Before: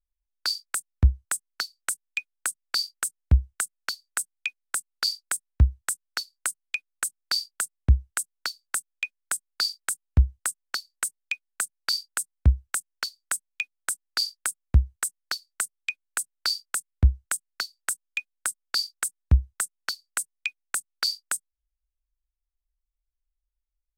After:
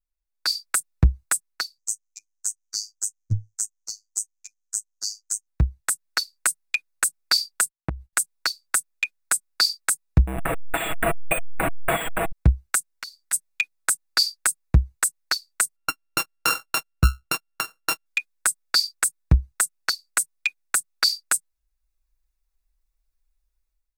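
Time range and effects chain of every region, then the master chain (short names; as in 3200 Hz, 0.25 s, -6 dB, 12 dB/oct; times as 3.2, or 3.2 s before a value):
1.78–5.47 EQ curve 110 Hz 0 dB, 230 Hz -7 dB, 730 Hz -14 dB, 1300 Hz -20 dB, 3300 Hz -26 dB, 6300 Hz +14 dB, 10000 Hz -7 dB + LFO notch sine 1 Hz 340–2400 Hz + robotiser 105 Hz
7.64–8.13 expander -44 dBFS + bell 6200 Hz -5 dB 0.35 oct + compressor 16:1, threshold -27 dBFS
10.27–12.32 delta modulation 16 kbps, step -25.5 dBFS + bell 690 Hz +11.5 dB 0.21 oct + careless resampling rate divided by 4×, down none, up hold
12.91–13.33 notch 2600 Hz, Q 15 + compressor 4:1, threshold -39 dBFS
15.76–18.06 sample sorter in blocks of 32 samples + mismatched tape noise reduction decoder only
whole clip: notch 3100 Hz, Q 7.3; comb 6.2 ms, depth 58%; AGC gain up to 11.5 dB; gain -3.5 dB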